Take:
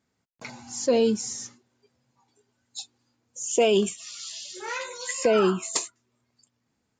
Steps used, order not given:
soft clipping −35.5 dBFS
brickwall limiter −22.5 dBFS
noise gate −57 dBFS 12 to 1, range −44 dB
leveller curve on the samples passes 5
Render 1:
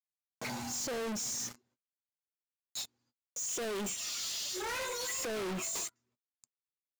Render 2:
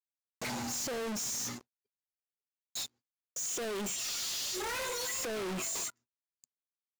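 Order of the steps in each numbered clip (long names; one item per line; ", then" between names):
leveller curve on the samples, then noise gate, then brickwall limiter, then soft clipping
brickwall limiter, then noise gate, then leveller curve on the samples, then soft clipping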